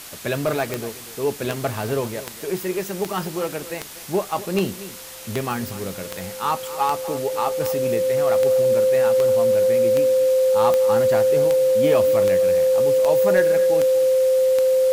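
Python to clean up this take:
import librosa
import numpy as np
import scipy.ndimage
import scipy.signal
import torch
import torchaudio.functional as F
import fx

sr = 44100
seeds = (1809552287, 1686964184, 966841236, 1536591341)

y = fx.fix_declick_ar(x, sr, threshold=10.0)
y = fx.notch(y, sr, hz=520.0, q=30.0)
y = fx.noise_reduce(y, sr, print_start_s=4.77, print_end_s=5.27, reduce_db=30.0)
y = fx.fix_echo_inverse(y, sr, delay_ms=242, level_db=-16.0)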